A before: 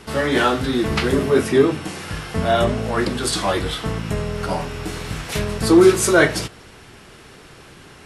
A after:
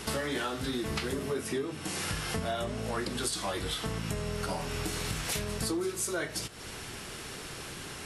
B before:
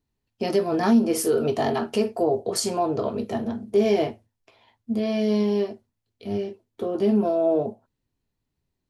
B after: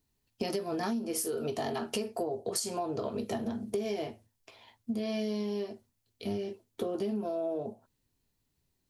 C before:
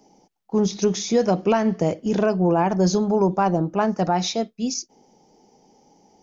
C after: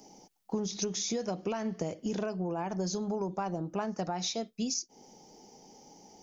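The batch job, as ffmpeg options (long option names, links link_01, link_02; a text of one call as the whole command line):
ffmpeg -i in.wav -af "highshelf=frequency=4100:gain=9.5,acompressor=threshold=-30dB:ratio=12" out.wav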